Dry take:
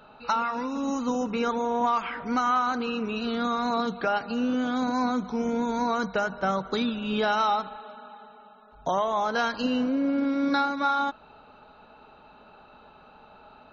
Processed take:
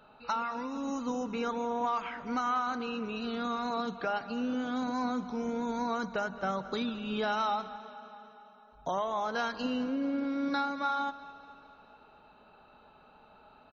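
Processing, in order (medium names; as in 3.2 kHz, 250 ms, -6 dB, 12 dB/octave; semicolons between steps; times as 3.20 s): feedback delay 217 ms, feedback 59%, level -17 dB; trim -6.5 dB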